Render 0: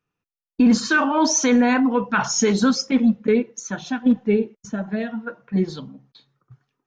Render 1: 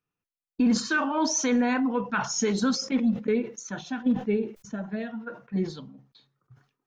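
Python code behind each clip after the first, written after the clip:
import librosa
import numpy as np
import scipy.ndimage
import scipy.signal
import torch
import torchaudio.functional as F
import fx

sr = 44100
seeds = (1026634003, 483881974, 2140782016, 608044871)

y = fx.sustainer(x, sr, db_per_s=150.0)
y = y * librosa.db_to_amplitude(-7.0)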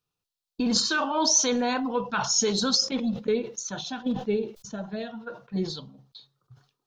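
y = fx.graphic_eq(x, sr, hz=(250, 2000, 4000), db=(-8, -10, 9))
y = y * librosa.db_to_amplitude(3.5)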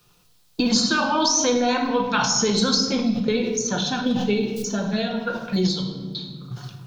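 y = fx.room_shoebox(x, sr, seeds[0], volume_m3=430.0, walls='mixed', distance_m=0.88)
y = fx.band_squash(y, sr, depth_pct=70)
y = y * librosa.db_to_amplitude(3.5)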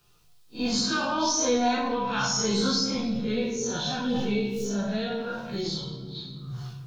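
y = fx.spec_blur(x, sr, span_ms=85.0)
y = fx.chorus_voices(y, sr, voices=6, hz=0.5, base_ms=14, depth_ms=1.6, mix_pct=50)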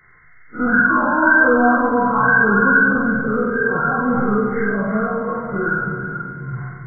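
y = fx.freq_compress(x, sr, knee_hz=1000.0, ratio=4.0)
y = fx.echo_heads(y, sr, ms=111, heads='first and third', feedback_pct=43, wet_db=-10.0)
y = y * librosa.db_to_amplitude(8.0)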